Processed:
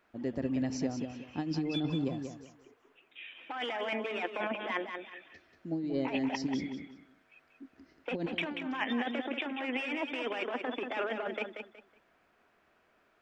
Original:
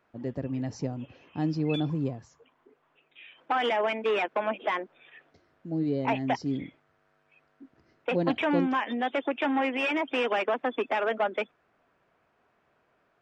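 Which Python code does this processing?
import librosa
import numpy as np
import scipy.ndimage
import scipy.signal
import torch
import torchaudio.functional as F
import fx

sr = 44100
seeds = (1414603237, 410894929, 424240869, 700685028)

p1 = fx.graphic_eq(x, sr, hz=(125, 500, 1000), db=(-11, -4, -4))
p2 = fx.over_compress(p1, sr, threshold_db=-33.0, ratio=-0.5)
y = p2 + fx.echo_feedback(p2, sr, ms=185, feedback_pct=25, wet_db=-7, dry=0)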